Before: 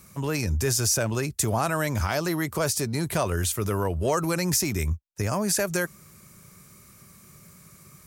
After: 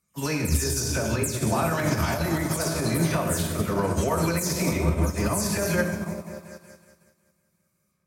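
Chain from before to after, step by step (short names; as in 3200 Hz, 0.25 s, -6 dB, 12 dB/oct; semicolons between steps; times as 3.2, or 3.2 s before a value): spectral delay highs early, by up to 0.154 s; HPF 43 Hz 12 dB/oct; repeats that get brighter 0.185 s, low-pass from 200 Hz, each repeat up 1 oct, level -3 dB; reverb, pre-delay 3 ms, DRR 2 dB; limiter -18.5 dBFS, peak gain reduction 10 dB; upward expander 2.5:1, over -45 dBFS; gain +6.5 dB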